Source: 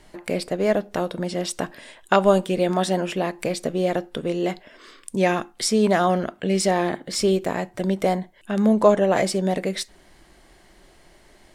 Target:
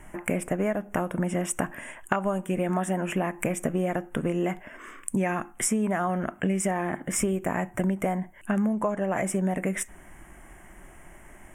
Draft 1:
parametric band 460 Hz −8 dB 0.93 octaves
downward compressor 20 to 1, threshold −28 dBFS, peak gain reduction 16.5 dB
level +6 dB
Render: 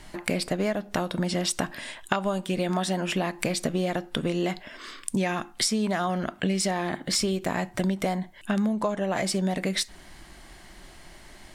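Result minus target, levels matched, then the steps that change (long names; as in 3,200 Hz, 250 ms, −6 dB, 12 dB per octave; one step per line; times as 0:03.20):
4,000 Hz band +14.0 dB
add first: Butterworth band-reject 4,300 Hz, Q 0.83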